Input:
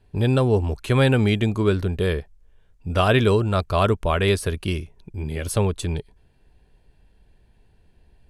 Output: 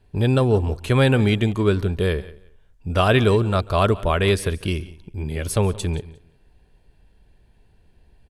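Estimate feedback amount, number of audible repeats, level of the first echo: no regular repeats, 3, -23.0 dB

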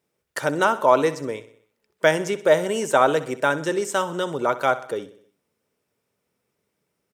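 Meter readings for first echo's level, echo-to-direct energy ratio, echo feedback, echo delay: -15.5 dB, -14.0 dB, 53%, 63 ms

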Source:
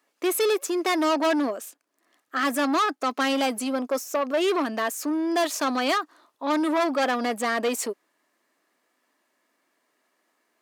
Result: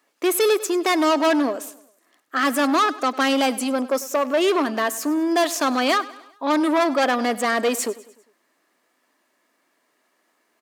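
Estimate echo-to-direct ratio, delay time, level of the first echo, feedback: -17.5 dB, 100 ms, -18.5 dB, 50%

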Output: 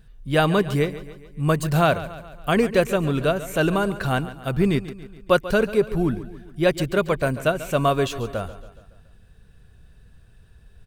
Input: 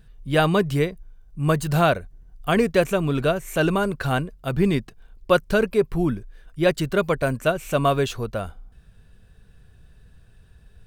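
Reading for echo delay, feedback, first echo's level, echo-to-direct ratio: 140 ms, 53%, -15.0 dB, -13.5 dB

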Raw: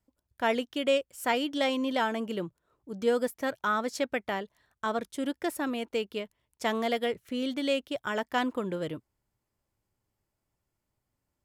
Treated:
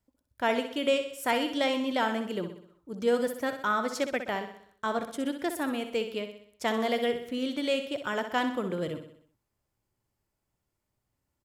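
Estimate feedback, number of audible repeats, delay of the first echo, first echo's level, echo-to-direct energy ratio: 51%, 5, 63 ms, -9.0 dB, -7.5 dB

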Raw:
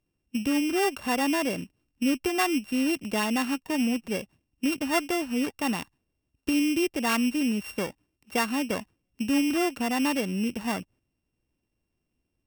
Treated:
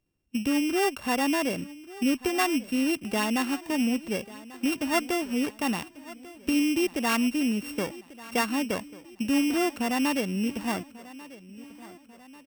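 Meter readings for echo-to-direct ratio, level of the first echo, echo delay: -17.0 dB, -18.5 dB, 1142 ms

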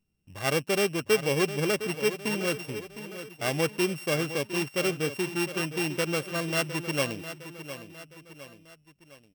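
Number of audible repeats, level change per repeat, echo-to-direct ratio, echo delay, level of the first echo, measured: 3, -6.5 dB, -11.0 dB, 709 ms, -12.0 dB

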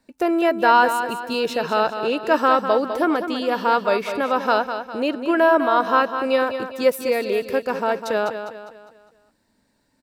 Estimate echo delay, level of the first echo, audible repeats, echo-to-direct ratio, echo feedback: 202 ms, -9.0 dB, 4, -8.0 dB, 43%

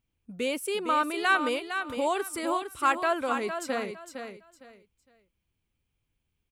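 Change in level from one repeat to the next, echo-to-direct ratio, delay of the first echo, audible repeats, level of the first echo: -12.5 dB, -7.5 dB, 458 ms, 3, -8.0 dB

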